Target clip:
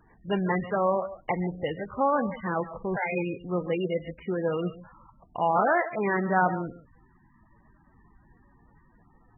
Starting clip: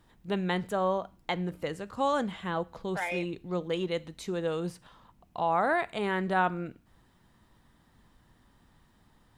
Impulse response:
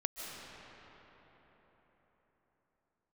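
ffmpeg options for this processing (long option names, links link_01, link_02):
-filter_complex "[1:a]atrim=start_sample=2205,atrim=end_sample=6615[link_01];[0:a][link_01]afir=irnorm=-1:irlink=0,volume=5dB" -ar 24000 -c:a libmp3lame -b:a 8k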